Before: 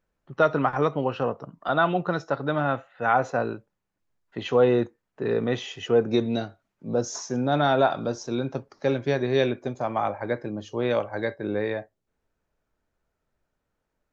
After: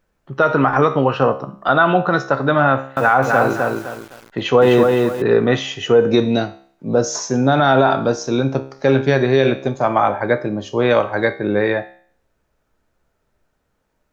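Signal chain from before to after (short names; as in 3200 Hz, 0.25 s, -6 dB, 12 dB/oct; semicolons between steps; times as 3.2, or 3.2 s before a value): dynamic EQ 1400 Hz, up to +4 dB, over -37 dBFS, Q 1.4; resonator 67 Hz, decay 0.53 s, harmonics all, mix 60%; maximiser +18 dB; 2.71–5.22 lo-fi delay 0.257 s, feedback 35%, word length 6-bit, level -3 dB; gain -2.5 dB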